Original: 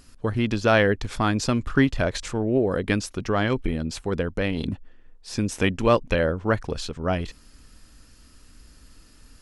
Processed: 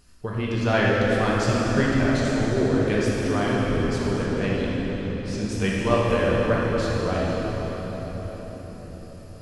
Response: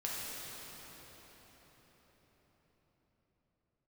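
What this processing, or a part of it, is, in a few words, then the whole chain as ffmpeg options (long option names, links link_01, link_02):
cathedral: -filter_complex "[1:a]atrim=start_sample=2205[link_01];[0:a][link_01]afir=irnorm=-1:irlink=0,asettb=1/sr,asplit=3[link_02][link_03][link_04];[link_02]atrim=end=4.264[link_05];[link_03]atrim=start=4.26:end=6.07,asetpts=PTS-STARTPTS,afade=type=in:duration=0.004:curve=qsin,afade=type=out:start_time=1.806:duration=0.004:curve=qsin,lowpass=9700[link_06];[link_04]atrim=start=6.066[link_07];[link_05][link_06]acrossfade=duration=0.004:curve1=hsin:curve2=qsin[link_08];[link_08][link_07]acrossfade=duration=0.004:curve1=qsin:curve2=hsin,volume=-3dB"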